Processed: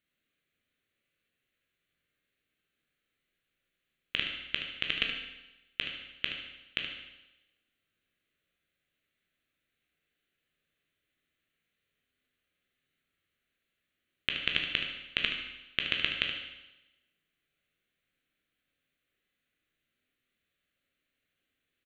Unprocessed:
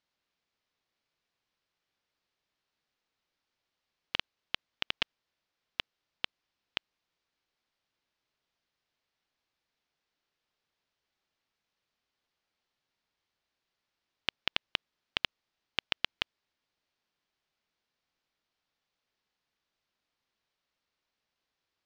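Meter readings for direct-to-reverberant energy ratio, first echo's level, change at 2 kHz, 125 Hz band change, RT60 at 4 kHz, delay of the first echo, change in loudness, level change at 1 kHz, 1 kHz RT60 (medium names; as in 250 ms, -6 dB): 0.5 dB, -9.0 dB, +5.5 dB, +5.0 dB, 1.0 s, 74 ms, +3.5 dB, -3.0 dB, 1.0 s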